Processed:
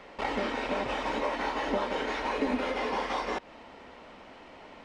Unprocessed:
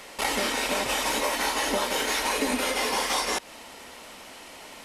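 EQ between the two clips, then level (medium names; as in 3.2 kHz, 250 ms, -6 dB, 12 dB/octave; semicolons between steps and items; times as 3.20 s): tape spacing loss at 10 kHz 33 dB; 0.0 dB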